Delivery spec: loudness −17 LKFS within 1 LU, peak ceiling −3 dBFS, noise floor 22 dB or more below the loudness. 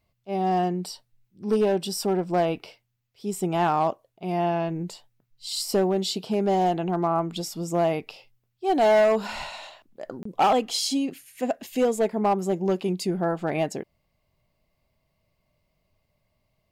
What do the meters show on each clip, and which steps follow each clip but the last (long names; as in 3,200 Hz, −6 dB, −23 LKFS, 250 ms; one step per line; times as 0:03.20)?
share of clipped samples 1.2%; peaks flattened at −15.5 dBFS; number of dropouts 1; longest dropout 24 ms; integrated loudness −25.5 LKFS; sample peak −15.5 dBFS; target loudness −17.0 LKFS
→ clipped peaks rebuilt −15.5 dBFS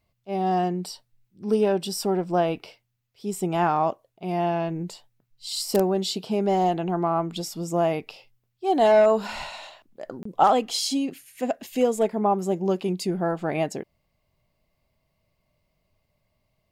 share of clipped samples 0.0%; number of dropouts 1; longest dropout 24 ms
→ repair the gap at 0:10.23, 24 ms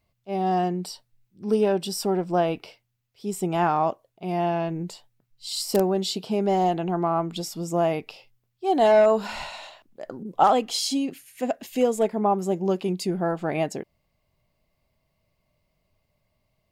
number of dropouts 0; integrated loudness −24.5 LKFS; sample peak −6.5 dBFS; target loudness −17.0 LKFS
→ level +7.5 dB
brickwall limiter −3 dBFS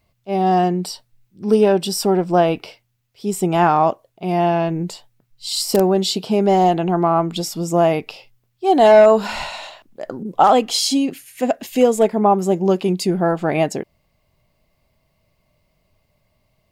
integrated loudness −17.5 LKFS; sample peak −3.0 dBFS; background noise floor −67 dBFS